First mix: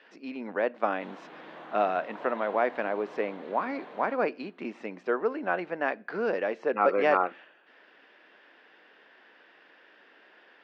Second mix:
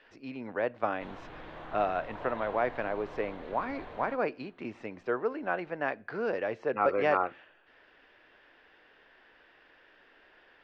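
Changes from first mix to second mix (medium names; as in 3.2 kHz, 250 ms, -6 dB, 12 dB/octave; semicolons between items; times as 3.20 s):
speech -3.0 dB; master: remove brick-wall FIR high-pass 160 Hz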